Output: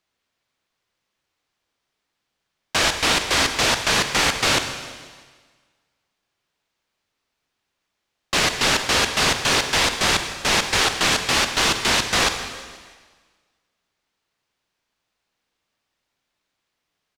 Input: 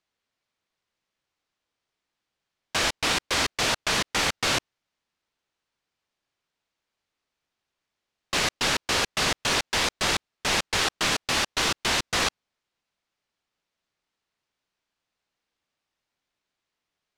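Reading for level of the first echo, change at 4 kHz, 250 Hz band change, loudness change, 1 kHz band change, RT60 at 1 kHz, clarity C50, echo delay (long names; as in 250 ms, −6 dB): −18.0 dB, +5.5 dB, +5.5 dB, +5.5 dB, +6.0 dB, 1.6 s, 7.5 dB, 162 ms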